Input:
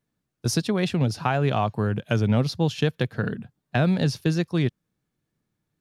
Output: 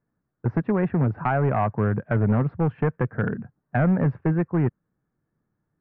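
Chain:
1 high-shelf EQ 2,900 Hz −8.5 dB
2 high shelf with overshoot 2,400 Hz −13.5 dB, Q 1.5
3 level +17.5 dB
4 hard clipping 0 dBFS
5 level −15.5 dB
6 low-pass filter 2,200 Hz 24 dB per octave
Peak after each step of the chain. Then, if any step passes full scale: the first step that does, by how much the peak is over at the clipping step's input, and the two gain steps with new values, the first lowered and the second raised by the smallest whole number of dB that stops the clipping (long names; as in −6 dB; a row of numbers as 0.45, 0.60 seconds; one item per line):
−9.5, −7.5, +10.0, 0.0, −15.5, −14.0 dBFS
step 3, 10.0 dB
step 3 +7.5 dB, step 5 −5.5 dB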